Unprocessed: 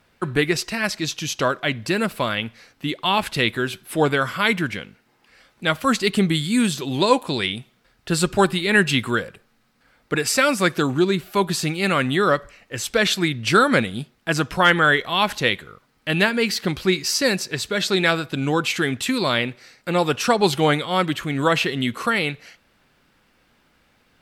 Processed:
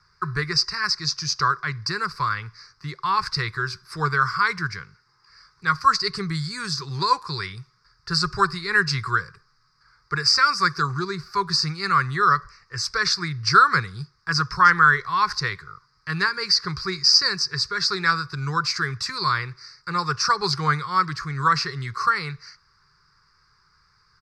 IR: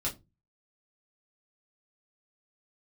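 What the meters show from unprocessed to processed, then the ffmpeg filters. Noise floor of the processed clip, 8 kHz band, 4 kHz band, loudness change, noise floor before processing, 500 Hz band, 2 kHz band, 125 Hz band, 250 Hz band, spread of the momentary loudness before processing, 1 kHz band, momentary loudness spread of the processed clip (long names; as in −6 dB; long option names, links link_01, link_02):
−63 dBFS, −3.0 dB, +1.0 dB, −1.0 dB, −62 dBFS, −12.5 dB, −1.0 dB, −2.0 dB, −11.5 dB, 8 LU, +2.5 dB, 13 LU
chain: -filter_complex "[0:a]firequalizer=gain_entry='entry(150,0);entry(240,-26);entry(400,-8);entry(610,-26);entry(1100,7);entry(2100,-6);entry(3100,-24);entry(4800,13);entry(6900,-7);entry(14000,-25)':delay=0.05:min_phase=1,acrossover=split=230|6600[link_01][link_02][link_03];[link_03]alimiter=level_in=1.5dB:limit=-24dB:level=0:latency=1:release=286,volume=-1.5dB[link_04];[link_01][link_02][link_04]amix=inputs=3:normalize=0"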